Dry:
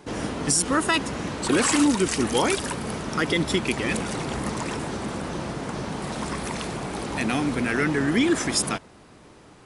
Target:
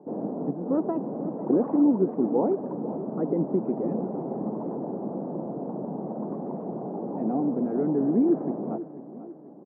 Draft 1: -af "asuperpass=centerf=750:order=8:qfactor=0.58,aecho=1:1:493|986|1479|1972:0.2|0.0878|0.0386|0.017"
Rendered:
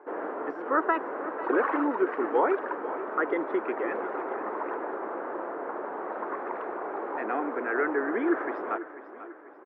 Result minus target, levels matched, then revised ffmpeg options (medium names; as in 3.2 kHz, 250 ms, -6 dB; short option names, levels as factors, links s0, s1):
1 kHz band +9.5 dB
-af "asuperpass=centerf=360:order=8:qfactor=0.58,aecho=1:1:493|986|1479|1972:0.2|0.0878|0.0386|0.017"